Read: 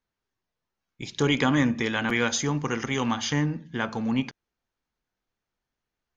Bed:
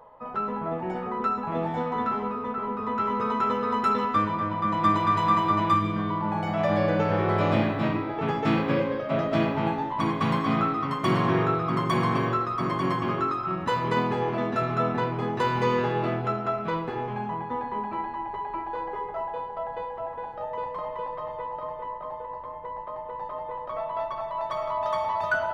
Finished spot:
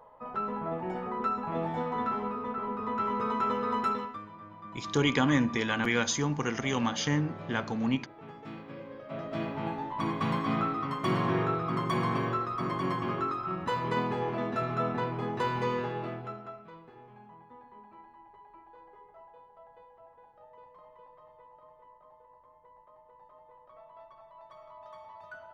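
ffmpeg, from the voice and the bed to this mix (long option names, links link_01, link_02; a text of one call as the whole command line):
ffmpeg -i stem1.wav -i stem2.wav -filter_complex "[0:a]adelay=3750,volume=-3dB[link_01];[1:a]volume=11dB,afade=type=out:start_time=3.8:duration=0.38:silence=0.158489,afade=type=in:start_time=8.77:duration=1.4:silence=0.177828,afade=type=out:start_time=15.44:duration=1.24:silence=0.149624[link_02];[link_01][link_02]amix=inputs=2:normalize=0" out.wav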